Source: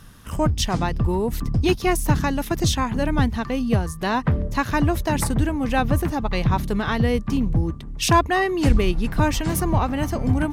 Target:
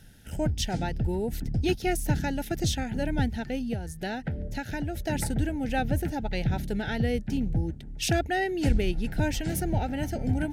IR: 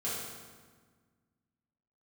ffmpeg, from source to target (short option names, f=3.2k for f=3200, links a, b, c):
-filter_complex "[0:a]asettb=1/sr,asplit=3[a][b][c];[a]atrim=end=3.564[d];[b]atrim=start=3.56:end=5.05,asetpts=PTS-STARTPTS,afade=t=in:d=0.004:c=qsin,afade=t=out:st=1.486:d=0.004:c=qsin,acompressor=threshold=-21dB:ratio=6[e];[c]atrim=start=5.046[f];[d][e]acrossfade=d=0.004:c1=hsin:c2=qsin[g];[g][f]acrossfade=d=0.004:c1=qsin:c2=hsin,asuperstop=centerf=1100:order=8:qfactor=2.3,volume=-6.5dB"